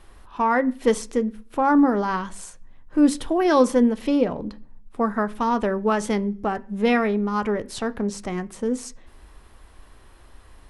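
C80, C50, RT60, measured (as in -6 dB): 26.5 dB, 22.0 dB, 0.45 s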